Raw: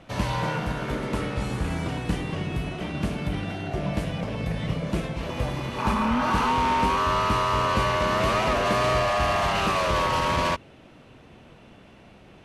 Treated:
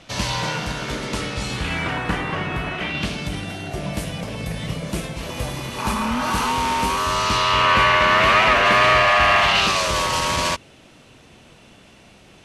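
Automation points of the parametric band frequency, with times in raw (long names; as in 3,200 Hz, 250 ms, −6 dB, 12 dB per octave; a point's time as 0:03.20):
parametric band +14 dB 2.3 octaves
0:01.43 5,600 Hz
0:01.99 1,400 Hz
0:02.67 1,400 Hz
0:03.47 11,000 Hz
0:06.99 11,000 Hz
0:07.72 2,100 Hz
0:09.36 2,100 Hz
0:09.89 7,900 Hz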